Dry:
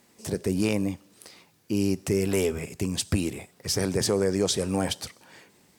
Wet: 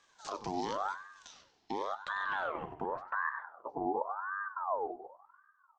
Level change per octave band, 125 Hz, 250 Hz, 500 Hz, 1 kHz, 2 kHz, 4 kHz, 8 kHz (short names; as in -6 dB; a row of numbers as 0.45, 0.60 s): -25.0 dB, -18.0 dB, -12.5 dB, +6.5 dB, +0.5 dB, -18.5 dB, under -20 dB